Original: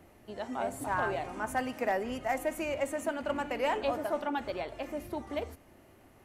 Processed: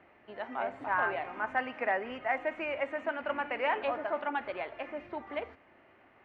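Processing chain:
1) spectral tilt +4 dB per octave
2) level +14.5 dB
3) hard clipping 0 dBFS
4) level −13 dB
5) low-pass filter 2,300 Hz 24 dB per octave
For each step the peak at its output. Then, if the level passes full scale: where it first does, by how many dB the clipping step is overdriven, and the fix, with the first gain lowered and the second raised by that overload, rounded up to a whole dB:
−16.0, −1.5, −1.5, −14.5, −17.0 dBFS
no step passes full scale

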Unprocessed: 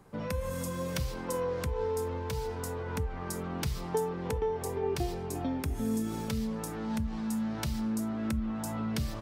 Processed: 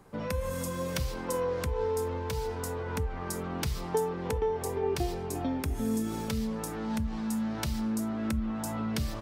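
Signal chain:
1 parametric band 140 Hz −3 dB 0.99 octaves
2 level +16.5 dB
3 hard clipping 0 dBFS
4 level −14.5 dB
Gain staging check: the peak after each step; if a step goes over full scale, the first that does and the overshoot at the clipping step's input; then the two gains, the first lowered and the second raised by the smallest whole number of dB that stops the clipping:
−19.0, −2.5, −2.5, −17.0 dBFS
no step passes full scale

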